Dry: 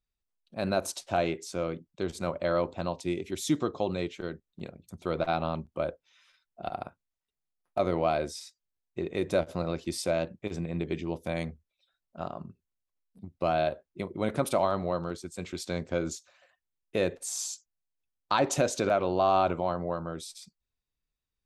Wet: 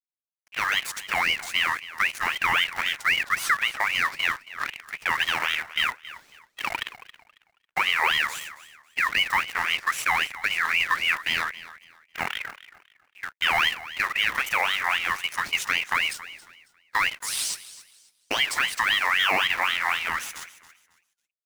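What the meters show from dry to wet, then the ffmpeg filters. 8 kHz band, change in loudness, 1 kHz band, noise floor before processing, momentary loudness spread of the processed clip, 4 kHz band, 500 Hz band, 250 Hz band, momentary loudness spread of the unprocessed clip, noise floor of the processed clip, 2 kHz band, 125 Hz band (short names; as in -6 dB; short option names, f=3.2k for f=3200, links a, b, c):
+4.5 dB, +7.0 dB, +5.0 dB, under -85 dBFS, 12 LU, +16.5 dB, -13.0 dB, -14.0 dB, 14 LU, -77 dBFS, +19.0 dB, -13.0 dB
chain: -filter_complex "[0:a]adynamicequalizer=threshold=0.00891:dfrequency=360:dqfactor=0.97:tfrequency=360:tqfactor=0.97:attack=5:release=100:ratio=0.375:range=3.5:mode=boostabove:tftype=bell,alimiter=limit=-21.5dB:level=0:latency=1:release=481,dynaudnorm=f=130:g=3:m=6.5dB,acrusher=bits=7:dc=4:mix=0:aa=0.000001,asplit=2[a][b];[b]aecho=0:1:274|548|822:0.15|0.0404|0.0109[c];[a][c]amix=inputs=2:normalize=0,aeval=exprs='val(0)*sin(2*PI*2000*n/s+2000*0.3/3.8*sin(2*PI*3.8*n/s))':c=same,volume=4.5dB"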